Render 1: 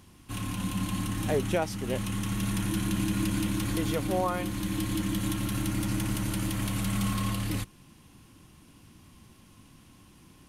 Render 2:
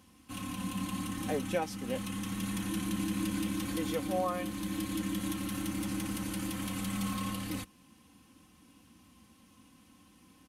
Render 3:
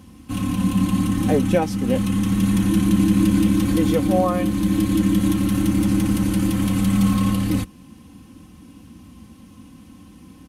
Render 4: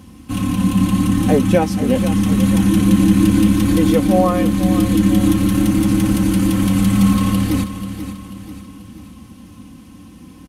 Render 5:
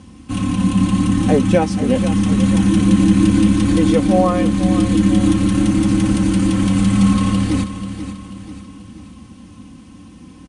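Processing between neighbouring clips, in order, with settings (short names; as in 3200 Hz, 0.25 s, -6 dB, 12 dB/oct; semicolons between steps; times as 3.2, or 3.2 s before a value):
HPF 76 Hz 12 dB/oct; comb 3.9 ms, depth 67%; gain -6 dB
low shelf 420 Hz +12 dB; gain +8 dB
feedback echo 0.488 s, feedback 47%, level -11 dB; gain +4 dB
steep low-pass 10000 Hz 96 dB/oct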